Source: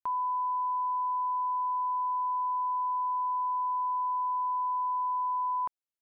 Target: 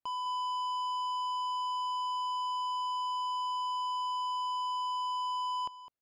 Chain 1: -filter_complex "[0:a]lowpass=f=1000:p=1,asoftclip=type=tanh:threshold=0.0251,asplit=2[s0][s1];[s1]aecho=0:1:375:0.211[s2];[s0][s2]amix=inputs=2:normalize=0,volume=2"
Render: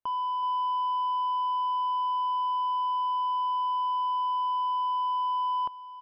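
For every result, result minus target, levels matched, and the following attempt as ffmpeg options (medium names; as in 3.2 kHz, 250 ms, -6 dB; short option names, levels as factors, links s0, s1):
echo 168 ms late; saturation: distortion -9 dB
-filter_complex "[0:a]lowpass=f=1000:p=1,asoftclip=type=tanh:threshold=0.0251,asplit=2[s0][s1];[s1]aecho=0:1:207:0.211[s2];[s0][s2]amix=inputs=2:normalize=0,volume=2"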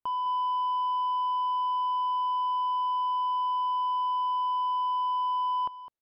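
saturation: distortion -9 dB
-filter_complex "[0:a]lowpass=f=1000:p=1,asoftclip=type=tanh:threshold=0.00944,asplit=2[s0][s1];[s1]aecho=0:1:207:0.211[s2];[s0][s2]amix=inputs=2:normalize=0,volume=2"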